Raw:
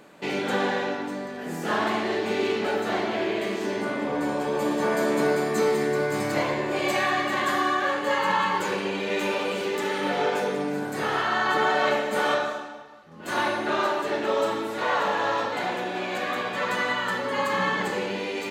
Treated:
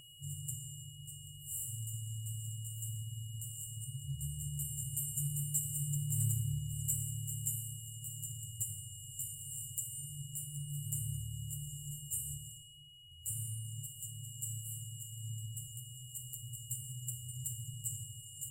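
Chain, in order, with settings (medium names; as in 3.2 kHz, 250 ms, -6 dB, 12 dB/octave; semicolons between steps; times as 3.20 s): FFT band-reject 150–7100 Hz; whistle 2.9 kHz -64 dBFS; hum notches 60/120 Hz; in parallel at -7 dB: saturation -35.5 dBFS, distortion -19 dB; on the sum: feedback comb 150 Hz, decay 1.1 s, harmonics all, mix 50%; on a send at -16 dB: reverberation RT60 0.65 s, pre-delay 122 ms; on the sum: trim +11 dB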